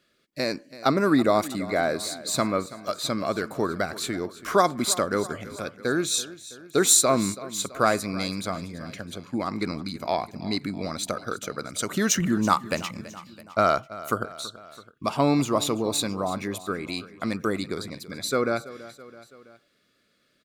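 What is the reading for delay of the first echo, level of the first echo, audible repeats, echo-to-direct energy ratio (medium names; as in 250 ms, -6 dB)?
330 ms, -17.0 dB, 3, -15.5 dB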